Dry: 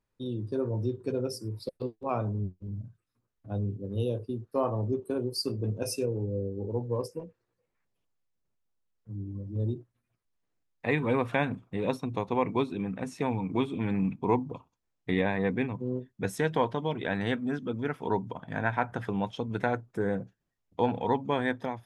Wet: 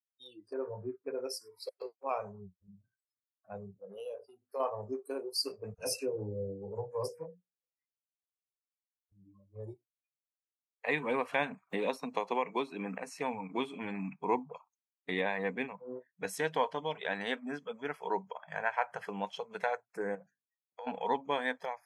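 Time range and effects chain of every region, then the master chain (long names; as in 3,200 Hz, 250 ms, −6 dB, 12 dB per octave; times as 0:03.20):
0:00.53–0:01.19: low-pass filter 2,200 Hz 24 dB per octave + downward expander −41 dBFS
0:03.71–0:04.60: parametric band 580 Hz +4.5 dB 0.55 octaves + mains-hum notches 50/100/150/200/250 Hz + downward compressor 2 to 1, threshold −35 dBFS
0:05.74–0:09.12: low-shelf EQ 220 Hz +9.5 dB + mains-hum notches 60/120/180/240/300/360/420/480/540 Hz + all-pass dispersion lows, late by 47 ms, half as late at 1,200 Hz
0:11.70–0:12.98: high-pass filter 150 Hz + multiband upward and downward compressor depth 100%
0:20.15–0:20.87: mains-hum notches 50/100/150/200/250/300/350/400/450 Hz + downward compressor 4 to 1, threshold −39 dBFS
whole clip: high-pass filter 650 Hz 6 dB per octave; noise reduction from a noise print of the clip's start 26 dB; dynamic equaliser 1,400 Hz, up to −4 dB, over −52 dBFS, Q 4.1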